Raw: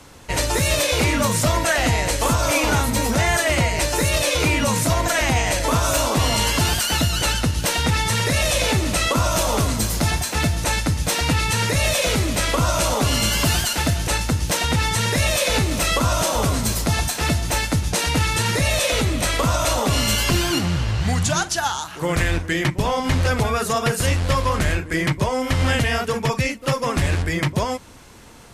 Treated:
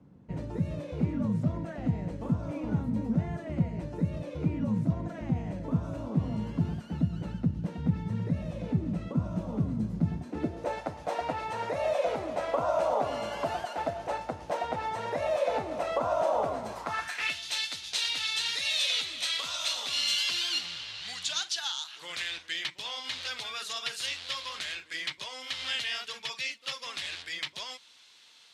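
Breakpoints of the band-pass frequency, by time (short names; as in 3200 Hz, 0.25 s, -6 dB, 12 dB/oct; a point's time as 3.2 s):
band-pass, Q 2.7
10.11 s 180 Hz
10.82 s 690 Hz
16.68 s 690 Hz
17.44 s 3700 Hz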